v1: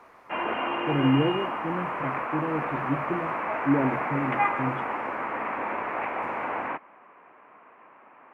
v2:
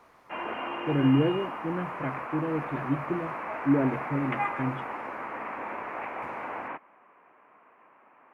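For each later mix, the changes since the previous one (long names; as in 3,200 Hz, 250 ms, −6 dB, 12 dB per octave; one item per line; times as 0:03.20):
background −5.5 dB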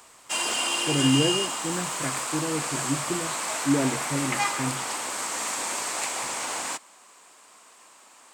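background: remove Butterworth low-pass 2,500 Hz 48 dB per octave
master: add high-shelf EQ 2,400 Hz +11.5 dB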